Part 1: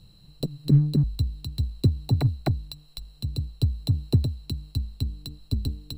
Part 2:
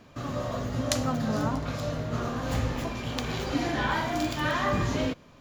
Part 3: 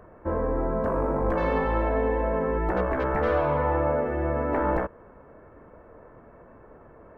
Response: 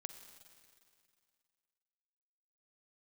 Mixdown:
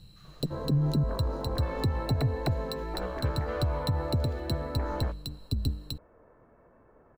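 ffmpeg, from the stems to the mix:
-filter_complex "[0:a]volume=0dB[link_01];[1:a]highpass=frequency=1200:width=0.5412,highpass=frequency=1200:width=1.3066,acompressor=threshold=-39dB:ratio=6,volume=-18dB[link_02];[2:a]adelay=250,volume=-9.5dB[link_03];[link_01][link_02][link_03]amix=inputs=3:normalize=0,alimiter=limit=-18.5dB:level=0:latency=1:release=106"

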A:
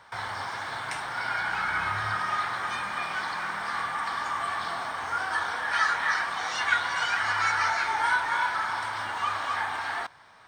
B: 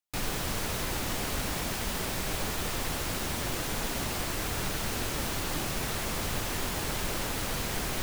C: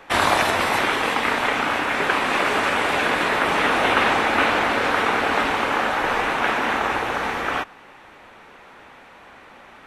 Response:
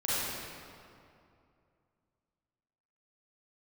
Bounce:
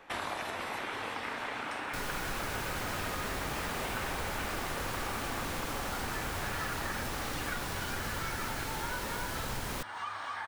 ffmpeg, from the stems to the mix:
-filter_complex "[0:a]acontrast=84,adelay=800,volume=-11.5dB[link_01];[1:a]adelay=1800,volume=-3dB,asplit=2[link_02][link_03];[link_03]volume=-4.5dB[link_04];[2:a]volume=-9.5dB[link_05];[3:a]atrim=start_sample=2205[link_06];[link_04][link_06]afir=irnorm=-1:irlink=0[link_07];[link_01][link_02][link_05][link_07]amix=inputs=4:normalize=0,acompressor=threshold=-38dB:ratio=2.5"

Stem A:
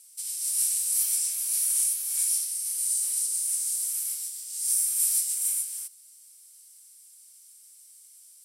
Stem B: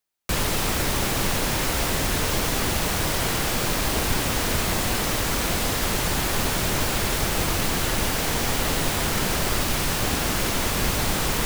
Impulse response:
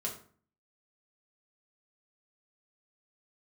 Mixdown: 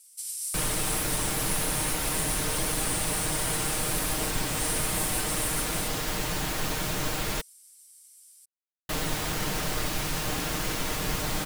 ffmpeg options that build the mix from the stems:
-filter_complex "[0:a]acompressor=threshold=-28dB:ratio=6,volume=-2.5dB[link_01];[1:a]adelay=250,volume=-7dB,asplit=3[link_02][link_03][link_04];[link_02]atrim=end=7.41,asetpts=PTS-STARTPTS,afade=type=out:start_time=7.406:duration=0.004:curve=hsin[link_05];[link_03]atrim=start=7.41:end=8.89,asetpts=PTS-STARTPTS,volume=0[link_06];[link_04]atrim=start=8.89,asetpts=PTS-STARTPTS,afade=type=in:duration=0.004:curve=hsin[link_07];[link_05][link_06][link_07]concat=n=3:v=0:a=1[link_08];[link_01][link_08]amix=inputs=2:normalize=0,aecho=1:1:6.5:0.5"

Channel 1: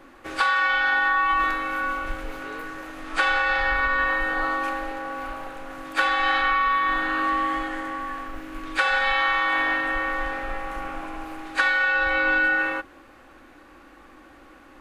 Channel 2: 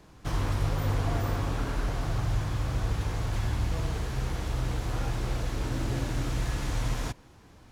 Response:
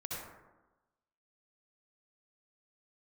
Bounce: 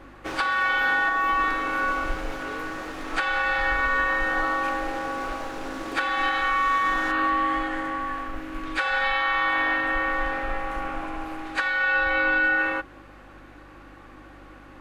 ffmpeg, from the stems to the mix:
-filter_complex "[0:a]volume=2dB[link_01];[1:a]highpass=frequency=260:width=0.5412,highpass=frequency=260:width=1.3066,aeval=exprs='sgn(val(0))*max(abs(val(0))-0.00335,0)':channel_layout=same,volume=1.5dB[link_02];[link_01][link_02]amix=inputs=2:normalize=0,highshelf=frequency=6600:gain=-7,aeval=exprs='val(0)+0.00282*(sin(2*PI*50*n/s)+sin(2*PI*2*50*n/s)/2+sin(2*PI*3*50*n/s)/3+sin(2*PI*4*50*n/s)/4+sin(2*PI*5*50*n/s)/5)':channel_layout=same,alimiter=limit=-13.5dB:level=0:latency=1:release=488"

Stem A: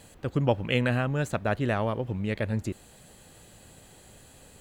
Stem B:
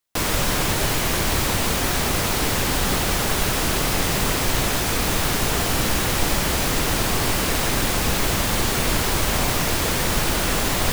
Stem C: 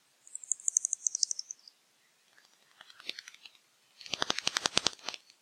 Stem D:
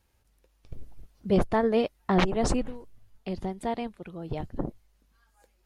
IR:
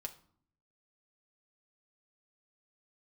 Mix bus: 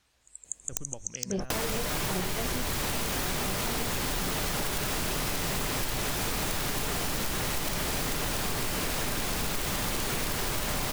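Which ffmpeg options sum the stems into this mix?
-filter_complex "[0:a]acompressor=threshold=-28dB:ratio=6,adelay=450,volume=-12.5dB[link_01];[1:a]asoftclip=type=tanh:threshold=-12.5dB,adelay=1350,volume=1.5dB,asplit=2[link_02][link_03];[link_03]volume=-12dB[link_04];[2:a]highshelf=frequency=6700:gain=-5.5,volume=-1dB[link_05];[3:a]flanger=delay=16:depth=5:speed=0.41,volume=-3.5dB[link_06];[link_02][link_05]amix=inputs=2:normalize=0,aeval=exprs='(mod(4.73*val(0)+1,2)-1)/4.73':channel_layout=same,acompressor=threshold=-26dB:ratio=6,volume=0dB[link_07];[4:a]atrim=start_sample=2205[link_08];[link_04][link_08]afir=irnorm=-1:irlink=0[link_09];[link_01][link_06][link_07][link_09]amix=inputs=4:normalize=0,acompressor=threshold=-27dB:ratio=6"

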